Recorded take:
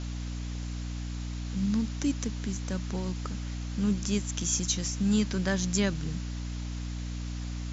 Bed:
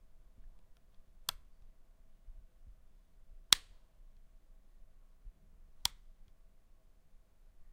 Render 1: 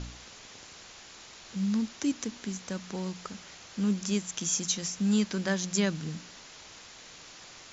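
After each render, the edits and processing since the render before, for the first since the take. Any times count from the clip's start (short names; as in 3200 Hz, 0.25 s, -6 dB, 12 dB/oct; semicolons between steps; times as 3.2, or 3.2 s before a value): de-hum 60 Hz, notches 5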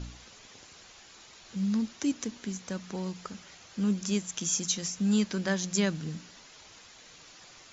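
denoiser 6 dB, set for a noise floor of -50 dBFS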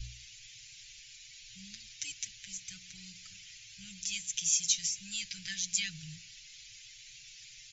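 elliptic band-stop 110–2300 Hz, stop band 40 dB; comb 6.2 ms, depth 84%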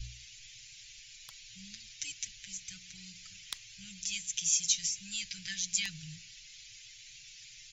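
add bed -15.5 dB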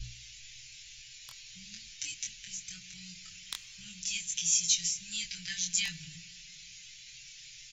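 doubler 23 ms -3 dB; shoebox room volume 3400 m³, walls mixed, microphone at 0.33 m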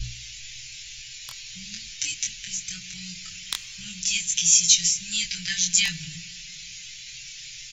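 gain +10 dB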